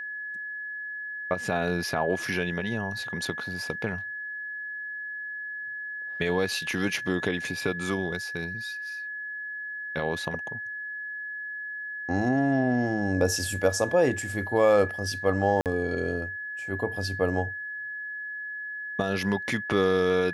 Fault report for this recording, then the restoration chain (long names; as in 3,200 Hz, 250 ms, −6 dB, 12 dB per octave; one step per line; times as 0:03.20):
whistle 1,700 Hz −33 dBFS
0:15.61–0:15.66: drop-out 48 ms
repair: notch filter 1,700 Hz, Q 30
repair the gap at 0:15.61, 48 ms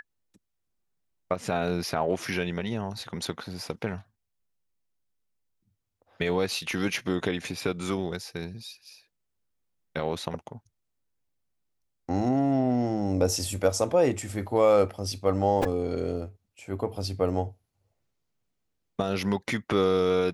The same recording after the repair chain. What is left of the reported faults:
none of them is left